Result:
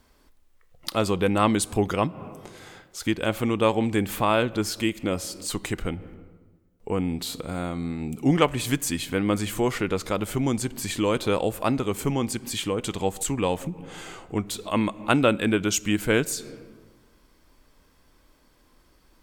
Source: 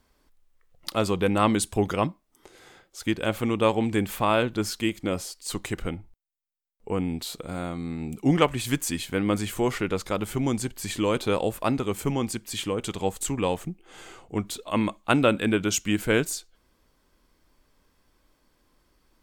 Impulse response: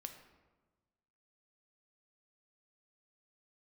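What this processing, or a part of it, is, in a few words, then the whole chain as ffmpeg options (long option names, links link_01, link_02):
ducked reverb: -filter_complex "[0:a]asplit=3[link_01][link_02][link_03];[1:a]atrim=start_sample=2205[link_04];[link_02][link_04]afir=irnorm=-1:irlink=0[link_05];[link_03]apad=whole_len=847834[link_06];[link_05][link_06]sidechaincompress=threshold=-43dB:ratio=6:attack=41:release=123,volume=4dB[link_07];[link_01][link_07]amix=inputs=2:normalize=0"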